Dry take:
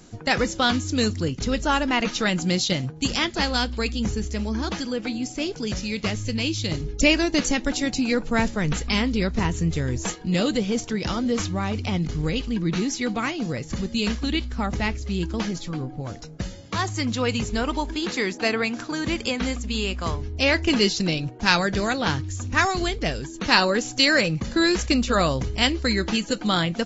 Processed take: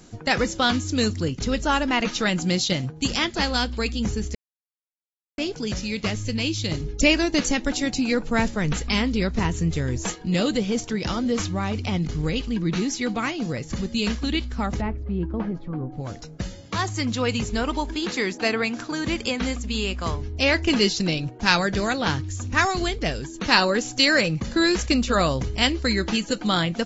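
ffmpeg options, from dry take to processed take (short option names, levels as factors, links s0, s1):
-filter_complex "[0:a]asplit=3[s0][s1][s2];[s0]afade=t=out:st=14.8:d=0.02[s3];[s1]lowpass=1100,afade=t=in:st=14.8:d=0.02,afade=t=out:st=15.91:d=0.02[s4];[s2]afade=t=in:st=15.91:d=0.02[s5];[s3][s4][s5]amix=inputs=3:normalize=0,asplit=3[s6][s7][s8];[s6]atrim=end=4.35,asetpts=PTS-STARTPTS,afade=t=out:st=4.346:d=0.004:c=hsin[s9];[s7]atrim=start=4.35:end=5.38,asetpts=PTS-STARTPTS,volume=0[s10];[s8]atrim=start=5.38,asetpts=PTS-STARTPTS,afade=t=in:d=0.004:c=hsin[s11];[s9][s10][s11]concat=n=3:v=0:a=1"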